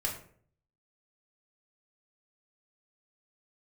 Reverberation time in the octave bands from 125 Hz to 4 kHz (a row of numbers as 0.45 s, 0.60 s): 0.80 s, 0.65 s, 0.60 s, 0.50 s, 0.45 s, 0.30 s